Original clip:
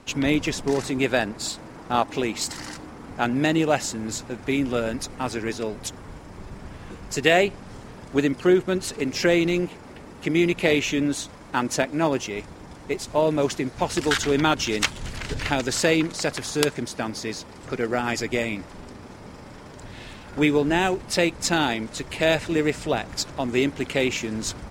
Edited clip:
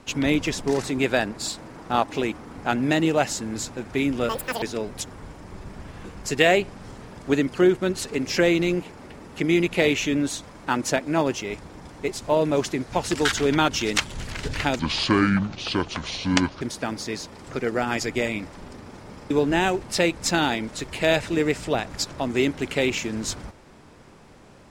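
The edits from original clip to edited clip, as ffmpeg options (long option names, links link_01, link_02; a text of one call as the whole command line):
ffmpeg -i in.wav -filter_complex "[0:a]asplit=7[link_01][link_02][link_03][link_04][link_05][link_06][link_07];[link_01]atrim=end=2.322[link_08];[link_02]atrim=start=2.848:end=4.824[link_09];[link_03]atrim=start=4.82:end=5.48,asetpts=PTS-STARTPTS,asetrate=87759,aresample=44100,atrim=end_sample=14626,asetpts=PTS-STARTPTS[link_10];[link_04]atrim=start=5.476:end=15.654[link_11];[link_05]atrim=start=15.65:end=16.78,asetpts=PTS-STARTPTS,asetrate=27342,aresample=44100[link_12];[link_06]atrim=start=16.776:end=19.472[link_13];[link_07]atrim=start=20.488[link_14];[link_08][link_09]acrossfade=duration=0.004:curve1=hsin:curve2=hsin[link_15];[link_15][link_10]acrossfade=duration=0.004:curve1=hsin:curve2=hsin[link_16];[link_16][link_11]acrossfade=duration=0.004:curve1=hsin:curve2=hsin[link_17];[link_17][link_12]acrossfade=duration=0.004:curve1=hsin:curve2=hsin[link_18];[link_18][link_13]acrossfade=duration=0.004:curve1=hsin:curve2=hsin[link_19];[link_19][link_14]acrossfade=duration=0.004:curve1=hsin:curve2=hsin" out.wav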